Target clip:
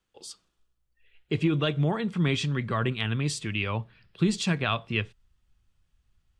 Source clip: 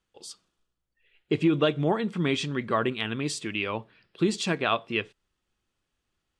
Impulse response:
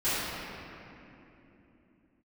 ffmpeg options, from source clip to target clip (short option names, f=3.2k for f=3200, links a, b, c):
-filter_complex "[0:a]asubboost=boost=8:cutoff=120,acrossover=split=250|1400|4800[a][b][c][d];[b]alimiter=limit=-22dB:level=0:latency=1[e];[a][e][c][d]amix=inputs=4:normalize=0"